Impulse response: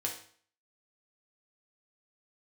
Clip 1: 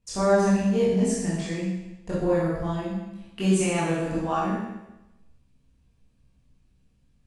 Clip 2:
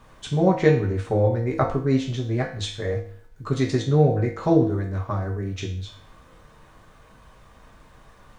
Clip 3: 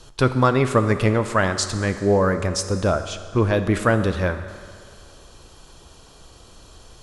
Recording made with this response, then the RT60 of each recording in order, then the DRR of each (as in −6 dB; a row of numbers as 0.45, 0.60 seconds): 2; 1.0, 0.50, 2.0 seconds; −9.0, −1.5, 9.0 decibels